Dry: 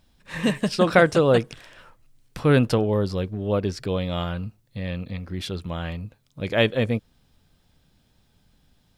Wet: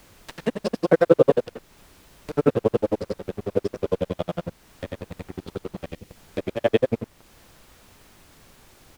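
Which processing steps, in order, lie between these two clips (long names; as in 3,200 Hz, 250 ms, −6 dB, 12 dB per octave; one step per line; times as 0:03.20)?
every overlapping window played backwards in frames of 197 ms
on a send: repeating echo 64 ms, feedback 56%, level −19 dB
on the sum: granular cloud 52 ms, grains 11 per second
parametric band 460 Hz +13.5 dB 2.5 octaves
dead-zone distortion −37.5 dBFS
upward compression, threshold −34 dBFS
background noise pink −57 dBFS
gain on a spectral selection 0:05.89–0:06.16, 530–1,800 Hz −7 dB
in parallel at +2.5 dB: downward compressor, threshold −38 dBFS, peak gain reduction 28 dB
on the sum: level −2.5 dB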